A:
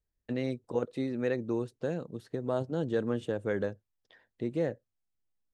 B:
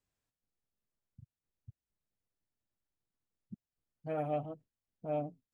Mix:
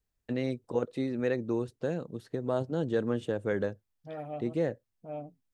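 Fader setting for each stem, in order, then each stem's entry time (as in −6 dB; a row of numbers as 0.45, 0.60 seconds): +1.0, −4.5 decibels; 0.00, 0.00 seconds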